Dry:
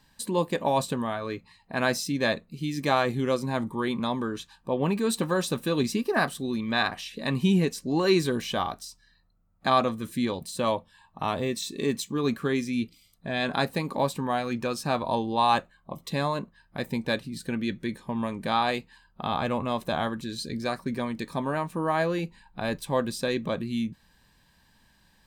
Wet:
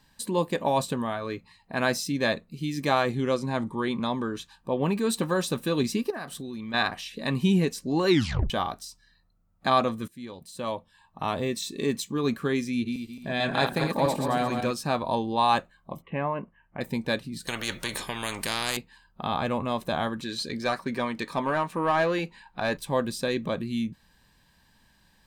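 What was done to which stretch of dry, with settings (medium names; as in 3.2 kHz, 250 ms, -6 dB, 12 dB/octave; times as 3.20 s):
3.10–4.36 s: low-pass 9.1 kHz
6.10–6.74 s: compression 5:1, threshold -33 dBFS
8.10 s: tape stop 0.40 s
10.08–11.36 s: fade in, from -18.5 dB
12.74–14.71 s: backward echo that repeats 110 ms, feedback 55%, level -3.5 dB
16.02–16.81 s: rippled Chebyshev low-pass 3 kHz, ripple 3 dB
17.47–18.77 s: spectrum-flattening compressor 4:1
20.20–22.77 s: overdrive pedal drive 12 dB, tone 3.8 kHz, clips at -14.5 dBFS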